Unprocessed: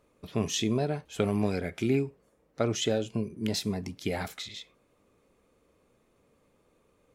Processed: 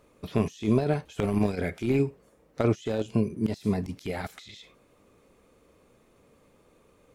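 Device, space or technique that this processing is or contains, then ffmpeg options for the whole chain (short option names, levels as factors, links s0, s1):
de-esser from a sidechain: -filter_complex "[0:a]asplit=2[s0][s1];[s1]highpass=f=4200:w=0.5412,highpass=f=4200:w=1.3066,apad=whole_len=314991[s2];[s0][s2]sidechaincompress=threshold=0.00178:ratio=20:attack=0.66:release=24,volume=2.11"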